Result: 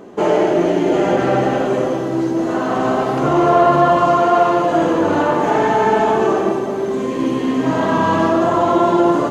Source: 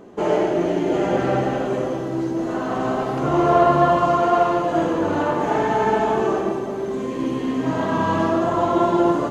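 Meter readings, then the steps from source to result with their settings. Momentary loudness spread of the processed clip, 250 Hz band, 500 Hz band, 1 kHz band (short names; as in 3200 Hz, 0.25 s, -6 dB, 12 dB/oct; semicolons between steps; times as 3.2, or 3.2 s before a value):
6 LU, +4.5 dB, +4.5 dB, +4.5 dB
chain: low shelf 82 Hz -10 dB; in parallel at +2 dB: limiter -13 dBFS, peak gain reduction 8.5 dB; on the sum: gain -1 dB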